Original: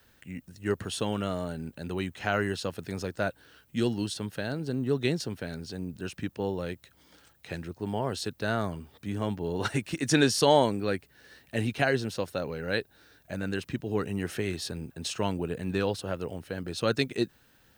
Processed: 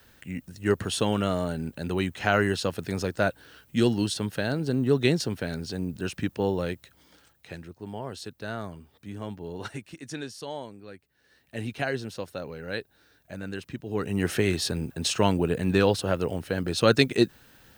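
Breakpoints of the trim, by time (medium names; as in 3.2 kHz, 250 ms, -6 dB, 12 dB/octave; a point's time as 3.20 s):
6.61 s +5 dB
7.76 s -5.5 dB
9.54 s -5.5 dB
10.33 s -15.5 dB
10.96 s -15.5 dB
11.67 s -3.5 dB
13.83 s -3.5 dB
14.26 s +7 dB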